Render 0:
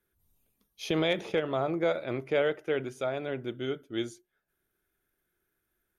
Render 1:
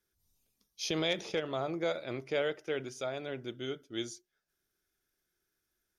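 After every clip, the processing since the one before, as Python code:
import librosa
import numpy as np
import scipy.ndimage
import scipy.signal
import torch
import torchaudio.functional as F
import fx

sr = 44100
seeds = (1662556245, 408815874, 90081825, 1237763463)

y = fx.peak_eq(x, sr, hz=5400.0, db=14.5, octaves=1.0)
y = y * librosa.db_to_amplitude(-5.5)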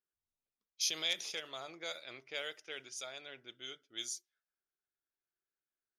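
y = F.preemphasis(torch.from_numpy(x), 0.97).numpy()
y = fx.env_lowpass(y, sr, base_hz=940.0, full_db=-46.0)
y = y * librosa.db_to_amplitude(7.5)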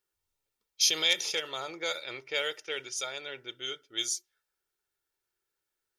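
y = x + 0.46 * np.pad(x, (int(2.2 * sr / 1000.0), 0))[:len(x)]
y = y * librosa.db_to_amplitude(8.5)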